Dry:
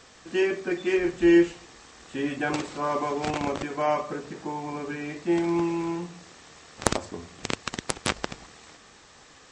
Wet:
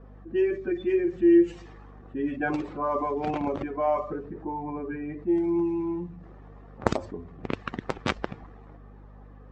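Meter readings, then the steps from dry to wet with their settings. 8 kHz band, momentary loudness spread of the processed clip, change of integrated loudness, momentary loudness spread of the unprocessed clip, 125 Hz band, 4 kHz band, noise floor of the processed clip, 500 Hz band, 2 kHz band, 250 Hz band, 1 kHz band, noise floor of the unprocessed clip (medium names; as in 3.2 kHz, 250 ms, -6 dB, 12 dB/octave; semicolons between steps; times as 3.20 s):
under -15 dB, 14 LU, -0.5 dB, 13 LU, -1.0 dB, no reading, -48 dBFS, +0.5 dB, -5.0 dB, +0.5 dB, -1.0 dB, -53 dBFS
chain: spectral contrast enhancement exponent 1.6; hum 50 Hz, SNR 20 dB; level-controlled noise filter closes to 720 Hz, open at -20.5 dBFS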